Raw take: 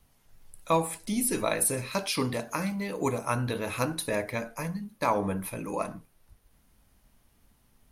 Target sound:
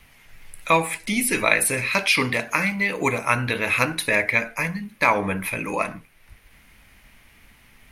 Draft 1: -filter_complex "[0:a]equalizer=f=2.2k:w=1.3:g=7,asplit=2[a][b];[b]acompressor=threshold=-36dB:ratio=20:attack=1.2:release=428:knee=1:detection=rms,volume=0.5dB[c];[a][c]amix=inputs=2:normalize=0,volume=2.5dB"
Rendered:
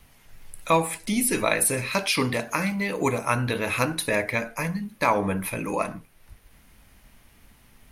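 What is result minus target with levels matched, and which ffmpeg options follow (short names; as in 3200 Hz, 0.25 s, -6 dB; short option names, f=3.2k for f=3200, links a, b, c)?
2000 Hz band -4.0 dB
-filter_complex "[0:a]equalizer=f=2.2k:w=1.3:g=16.5,asplit=2[a][b];[b]acompressor=threshold=-36dB:ratio=20:attack=1.2:release=428:knee=1:detection=rms,volume=0.5dB[c];[a][c]amix=inputs=2:normalize=0,volume=2.5dB"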